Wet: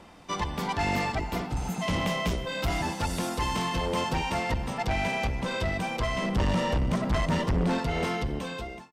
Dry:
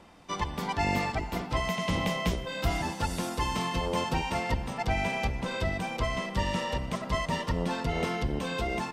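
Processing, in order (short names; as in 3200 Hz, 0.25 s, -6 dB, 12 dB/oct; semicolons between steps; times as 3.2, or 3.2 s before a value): ending faded out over 0.81 s; 1.54–1.79 spectral repair 290–6100 Hz before; 6.22–7.79 low shelf 470 Hz +10.5 dB; soft clip -25 dBFS, distortion -7 dB; gain +3.5 dB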